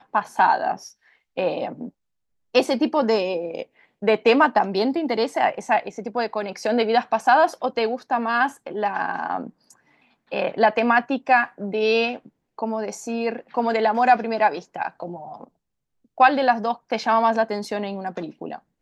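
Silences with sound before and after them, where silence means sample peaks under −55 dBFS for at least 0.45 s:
0:01.91–0:02.54
0:15.48–0:16.05

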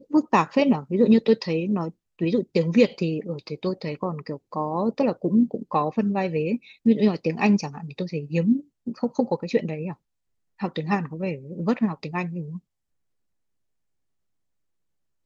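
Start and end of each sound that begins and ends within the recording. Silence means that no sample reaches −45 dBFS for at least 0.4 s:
0:10.59–0:12.59

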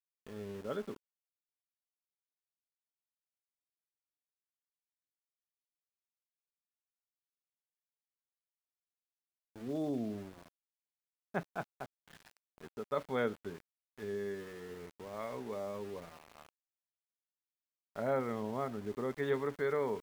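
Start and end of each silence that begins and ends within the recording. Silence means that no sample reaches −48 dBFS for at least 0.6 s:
0:00.97–0:09.56
0:10.48–0:11.34
0:16.49–0:17.96

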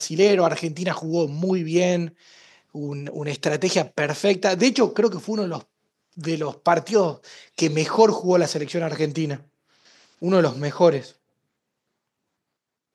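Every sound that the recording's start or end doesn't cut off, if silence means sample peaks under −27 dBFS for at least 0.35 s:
0:02.75–0:05.58
0:06.24–0:07.12
0:07.58–0:09.35
0:10.22–0:11.00

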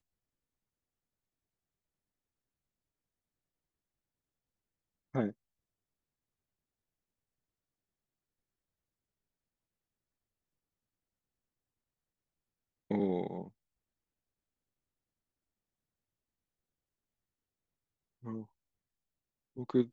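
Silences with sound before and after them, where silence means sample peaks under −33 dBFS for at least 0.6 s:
0:05.29–0:12.91
0:13.42–0:18.28
0:18.38–0:19.59

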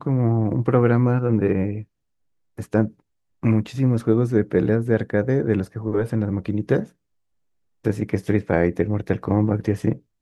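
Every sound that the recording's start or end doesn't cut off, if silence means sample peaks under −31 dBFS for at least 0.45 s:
0:02.59–0:02.88
0:03.43–0:06.84

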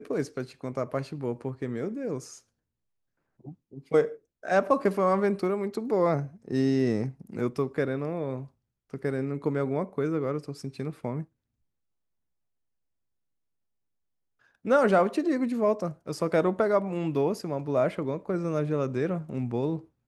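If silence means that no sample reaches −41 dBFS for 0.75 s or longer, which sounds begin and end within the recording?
0:03.45–0:11.24

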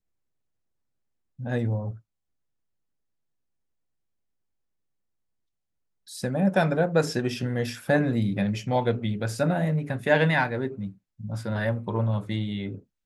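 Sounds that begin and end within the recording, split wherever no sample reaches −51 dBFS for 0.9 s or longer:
0:01.39–0:02.00

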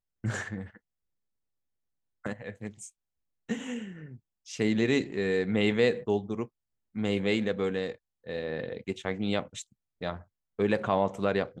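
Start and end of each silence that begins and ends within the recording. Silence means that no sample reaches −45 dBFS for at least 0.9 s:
0:00.77–0:02.25

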